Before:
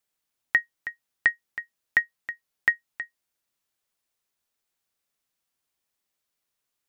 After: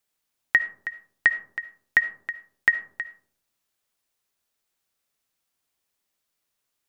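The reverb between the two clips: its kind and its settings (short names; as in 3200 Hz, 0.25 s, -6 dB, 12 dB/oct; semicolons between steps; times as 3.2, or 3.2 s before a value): digital reverb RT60 0.59 s, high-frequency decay 0.3×, pre-delay 30 ms, DRR 13 dB; gain +2.5 dB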